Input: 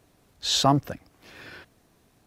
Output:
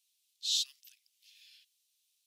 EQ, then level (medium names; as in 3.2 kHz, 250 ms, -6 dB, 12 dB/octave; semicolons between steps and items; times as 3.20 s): steep high-pass 2.9 kHz 36 dB/octave; -6.0 dB